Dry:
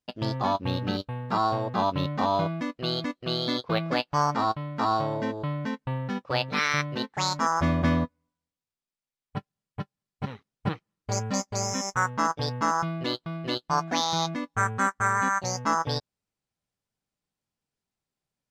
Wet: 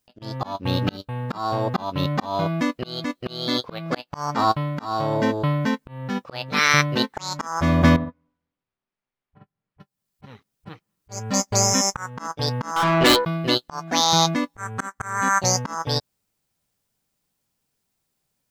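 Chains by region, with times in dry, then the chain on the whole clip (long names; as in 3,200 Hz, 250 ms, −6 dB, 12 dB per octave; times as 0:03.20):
0:07.96–0:09.80: low-pass filter 2,100 Hz + double-tracking delay 44 ms −9 dB + downward compressor, threshold −32 dBFS
0:12.76–0:13.25: high-shelf EQ 4,800 Hz −10 dB + hum removal 70.5 Hz, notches 31 + mid-hump overdrive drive 26 dB, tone 4,500 Hz, clips at −15 dBFS
whole clip: high-shelf EQ 8,700 Hz +11.5 dB; volume swells 412 ms; level +8.5 dB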